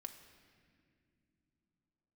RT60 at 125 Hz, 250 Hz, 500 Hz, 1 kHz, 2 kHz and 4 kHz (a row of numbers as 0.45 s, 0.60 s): 4.3 s, 3.9 s, 2.3 s, 1.7 s, 2.2 s, 1.6 s